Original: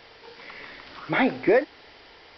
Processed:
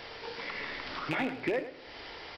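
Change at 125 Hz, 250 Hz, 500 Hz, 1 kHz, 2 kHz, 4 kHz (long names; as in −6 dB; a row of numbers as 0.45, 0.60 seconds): −5.0, −9.5, −11.5, −7.5, −6.5, −1.0 decibels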